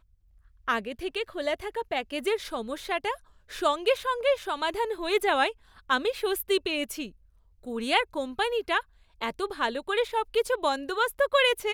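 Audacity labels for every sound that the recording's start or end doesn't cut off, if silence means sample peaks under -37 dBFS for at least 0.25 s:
0.680000	3.150000	sound
3.500000	5.510000	sound
5.900000	7.090000	sound
7.660000	8.810000	sound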